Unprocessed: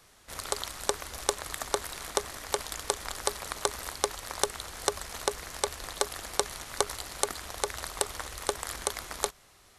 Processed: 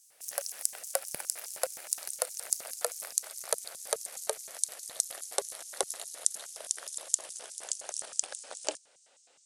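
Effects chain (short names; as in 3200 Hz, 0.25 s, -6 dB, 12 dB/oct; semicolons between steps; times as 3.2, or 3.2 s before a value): speed glide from 139% -> 68%; LFO high-pass square 4.8 Hz 580–6300 Hz; fifteen-band EQ 160 Hz +6 dB, 1000 Hz -7 dB, 10000 Hz +9 dB; gain -6.5 dB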